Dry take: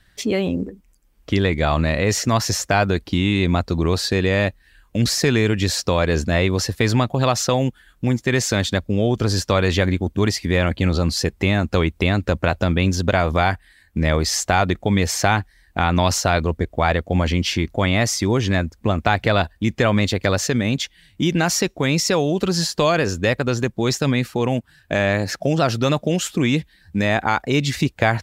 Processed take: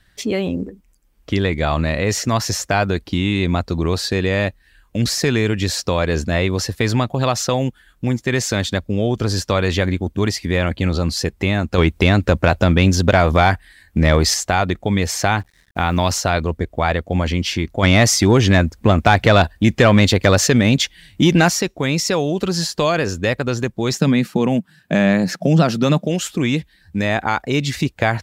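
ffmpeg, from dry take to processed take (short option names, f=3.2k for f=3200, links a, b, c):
-filter_complex "[0:a]asettb=1/sr,asplit=3[a][b][c];[a]atrim=end=11.784[d];[b]atrim=start=11.78:end=14.34,asetpts=PTS-STARTPTS,afade=t=in:d=0.004:c=qsin,afade=t=out:st=2.556:d=0.004:c=qsin,acontrast=33[e];[c]atrim=start=14.336[f];[d][e]acrossfade=d=0.004:c1=hsin:c2=qsin[g];[g][f]acrossfade=d=0.004:c1=qsin:c2=hsin,asettb=1/sr,asplit=3[h][i][j];[h]atrim=end=15.394[k];[i]atrim=start=15.39:end=16.14,asetpts=PTS-STARTPTS,afade=t=in:d=0.004:c=qsin,afade=t=out:st=0.746:d=0.004:c=qsin,acrusher=bits=7:mix=0:aa=0.5[l];[j]atrim=start=16.136[m];[k][l]acrossfade=d=0.004:c1=hsin:c2=qsin[n];[n][m]acrossfade=d=0.004:c1=qsin:c2=hsin,asplit=3[o][p][q];[o]afade=t=out:st=17.82:d=0.02[r];[p]acontrast=77,afade=t=in:st=17.82:d=0.02,afade=t=out:st=21.48:d=0.02[s];[q]afade=t=in:st=21.48:d=0.02[t];[r][s][t]amix=inputs=3:normalize=0,asettb=1/sr,asplit=3[u][v][w];[u]atrim=end=23.934[x];[v]atrim=start=23.93:end=26.05,asetpts=PTS-STARTPTS,afade=t=in:d=0.004:c=qsin,afade=t=out:st=2.116:d=0.004:c=qsin,highpass=f=180:t=q:w=4.9[y];[w]atrim=start=26.046[z];[x][y]acrossfade=d=0.004:c1=hsin:c2=qsin[aa];[aa][z]acrossfade=d=0.004:c1=qsin:c2=hsin"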